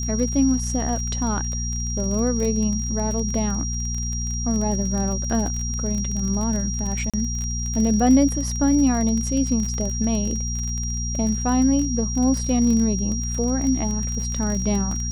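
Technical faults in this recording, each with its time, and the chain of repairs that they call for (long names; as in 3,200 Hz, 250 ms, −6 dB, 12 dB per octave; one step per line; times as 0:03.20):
surface crackle 28 per second −26 dBFS
mains hum 60 Hz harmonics 4 −27 dBFS
whistle 5,700 Hz −29 dBFS
0:07.10–0:07.14: drop-out 36 ms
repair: click removal
notch filter 5,700 Hz, Q 30
hum removal 60 Hz, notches 4
repair the gap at 0:07.10, 36 ms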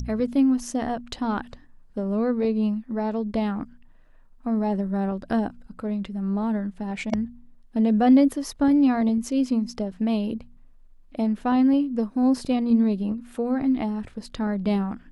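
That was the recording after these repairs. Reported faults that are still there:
none of them is left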